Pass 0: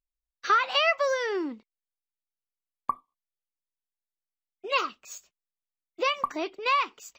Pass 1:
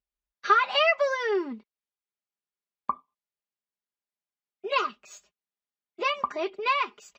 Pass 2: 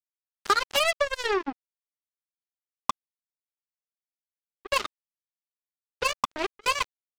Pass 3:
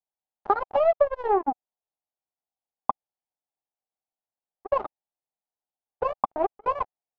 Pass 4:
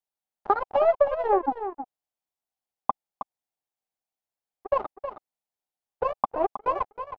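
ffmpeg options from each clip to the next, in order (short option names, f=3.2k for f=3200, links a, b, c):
-af "highpass=47,aemphasis=mode=reproduction:type=50fm,aecho=1:1:4.9:0.72"
-af "equalizer=f=280:w=3.8:g=10,acompressor=threshold=-25dB:ratio=3,acrusher=bits=3:mix=0:aa=0.5,volume=3dB"
-af "lowpass=f=780:t=q:w=4.5"
-af "aecho=1:1:317:0.316"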